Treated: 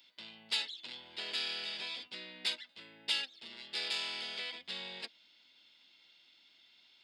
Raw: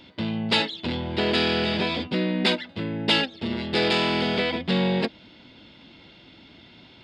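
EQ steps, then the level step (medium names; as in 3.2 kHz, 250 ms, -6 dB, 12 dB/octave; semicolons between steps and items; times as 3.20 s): differentiator; -4.0 dB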